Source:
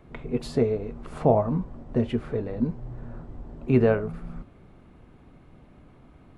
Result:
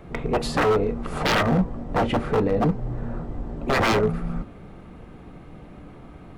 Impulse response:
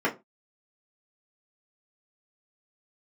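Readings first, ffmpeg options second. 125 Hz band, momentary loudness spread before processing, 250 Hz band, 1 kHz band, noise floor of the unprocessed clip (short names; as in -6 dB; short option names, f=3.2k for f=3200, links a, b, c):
+2.0 dB, 20 LU, +1.5 dB, +9.0 dB, -53 dBFS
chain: -filter_complex "[0:a]aeval=exprs='0.0596*(abs(mod(val(0)/0.0596+3,4)-2)-1)':c=same,asplit=2[a][b];[1:a]atrim=start_sample=2205[c];[b][c]afir=irnorm=-1:irlink=0,volume=-21.5dB[d];[a][d]amix=inputs=2:normalize=0,volume=8.5dB"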